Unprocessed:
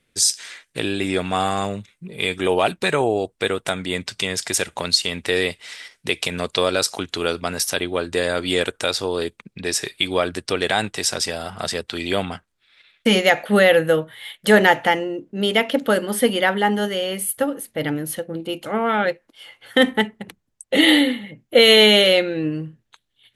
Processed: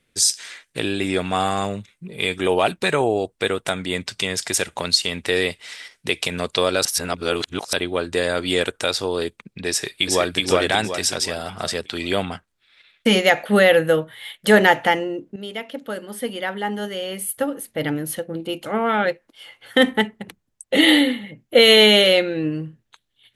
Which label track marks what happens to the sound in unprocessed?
6.850000	7.730000	reverse
9.700000	10.380000	delay throw 370 ms, feedback 40%, level −0.5 dB
15.360000	17.720000	fade in quadratic, from −12.5 dB

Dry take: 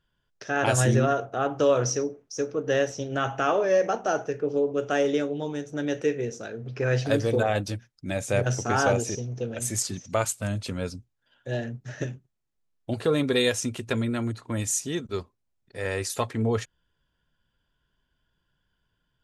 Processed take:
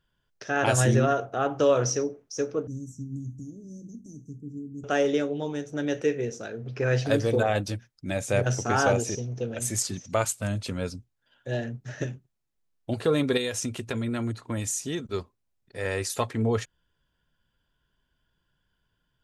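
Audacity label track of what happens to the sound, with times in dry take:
2.670000	4.840000	Chebyshev band-stop filter 260–7,400 Hz, order 4
13.370000	15.140000	downward compressor, threshold −25 dBFS

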